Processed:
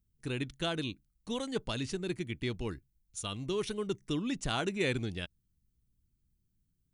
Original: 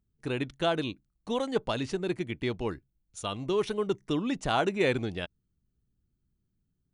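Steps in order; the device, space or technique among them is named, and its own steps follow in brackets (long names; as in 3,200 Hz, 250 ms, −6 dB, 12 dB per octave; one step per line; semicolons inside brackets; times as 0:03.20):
smiley-face EQ (low-shelf EQ 92 Hz +6 dB; parametric band 730 Hz −7.5 dB 1.6 octaves; high-shelf EQ 5,700 Hz +8.5 dB)
level −3 dB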